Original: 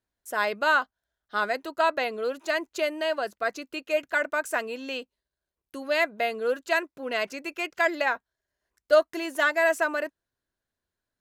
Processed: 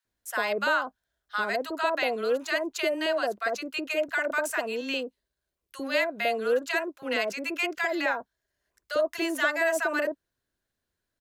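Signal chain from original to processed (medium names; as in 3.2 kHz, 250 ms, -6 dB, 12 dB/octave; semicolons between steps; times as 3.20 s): peak limiter -19 dBFS, peak gain reduction 10 dB; bands offset in time highs, lows 50 ms, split 900 Hz; trim +3.5 dB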